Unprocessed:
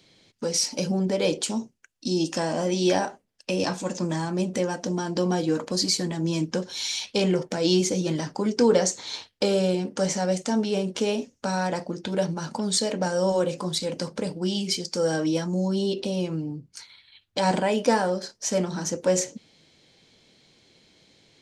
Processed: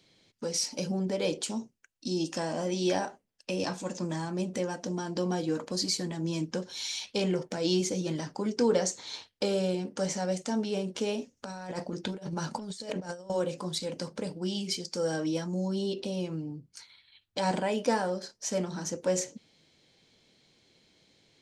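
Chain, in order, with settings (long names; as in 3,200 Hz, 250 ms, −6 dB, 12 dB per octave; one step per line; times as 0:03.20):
0:11.37–0:13.30: compressor whose output falls as the input rises −30 dBFS, ratio −0.5
level −6 dB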